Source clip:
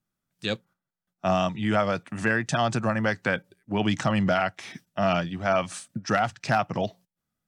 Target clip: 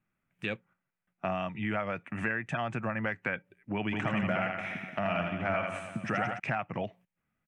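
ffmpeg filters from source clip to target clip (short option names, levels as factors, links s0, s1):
-filter_complex "[0:a]highshelf=f=3300:t=q:w=3:g=-11.5,acompressor=threshold=0.0141:ratio=2.5,asplit=3[s0][s1][s2];[s0]afade=t=out:st=3.91:d=0.02[s3];[s1]aecho=1:1:80|176|291.2|429.4|595.3:0.631|0.398|0.251|0.158|0.1,afade=t=in:st=3.91:d=0.02,afade=t=out:st=6.38:d=0.02[s4];[s2]afade=t=in:st=6.38:d=0.02[s5];[s3][s4][s5]amix=inputs=3:normalize=0,volume=1.26"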